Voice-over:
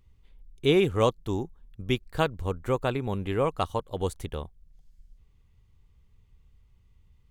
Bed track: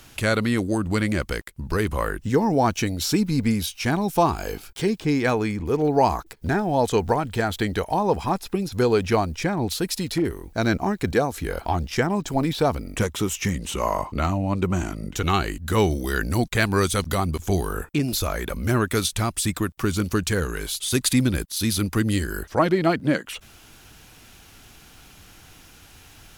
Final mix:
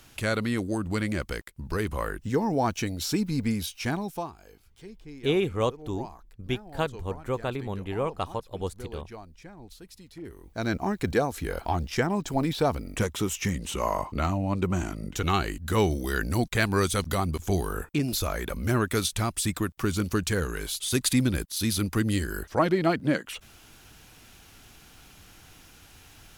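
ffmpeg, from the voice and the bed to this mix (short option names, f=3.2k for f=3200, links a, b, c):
-filter_complex "[0:a]adelay=4600,volume=-3dB[a];[1:a]volume=13.5dB,afade=t=out:st=3.88:d=0.44:silence=0.141254,afade=t=in:st=10.15:d=0.81:silence=0.112202[b];[a][b]amix=inputs=2:normalize=0"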